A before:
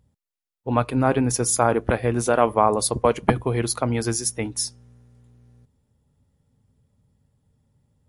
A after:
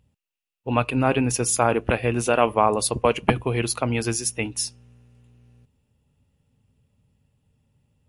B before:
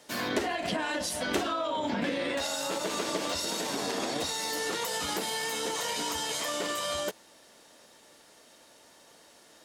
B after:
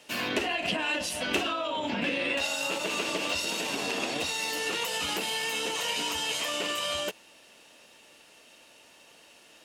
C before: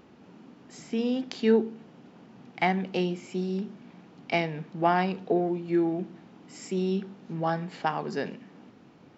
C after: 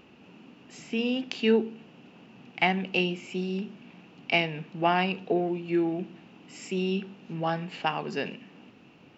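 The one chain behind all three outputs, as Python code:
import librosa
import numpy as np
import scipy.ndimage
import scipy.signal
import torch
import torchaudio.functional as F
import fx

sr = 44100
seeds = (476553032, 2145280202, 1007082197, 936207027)

y = fx.peak_eq(x, sr, hz=2700.0, db=14.0, octaves=0.35)
y = F.gain(torch.from_numpy(y), -1.0).numpy()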